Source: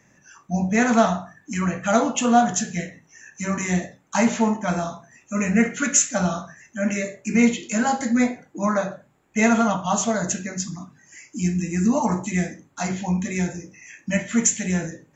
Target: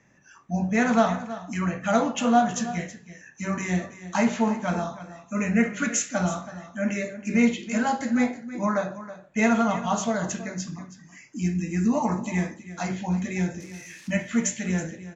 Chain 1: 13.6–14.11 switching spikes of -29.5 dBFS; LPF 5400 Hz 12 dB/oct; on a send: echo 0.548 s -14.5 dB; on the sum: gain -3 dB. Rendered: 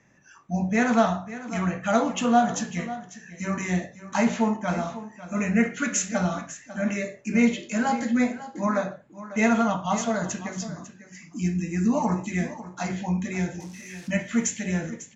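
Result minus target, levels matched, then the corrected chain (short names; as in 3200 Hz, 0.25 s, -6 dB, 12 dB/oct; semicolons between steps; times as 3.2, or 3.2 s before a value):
echo 0.224 s late
13.6–14.11 switching spikes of -29.5 dBFS; LPF 5400 Hz 12 dB/oct; on a send: echo 0.324 s -14.5 dB; on the sum: gain -3 dB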